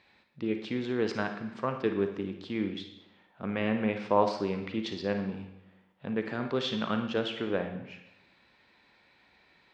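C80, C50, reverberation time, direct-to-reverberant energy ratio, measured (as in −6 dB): 10.5 dB, 6.5 dB, 0.85 s, 5.5 dB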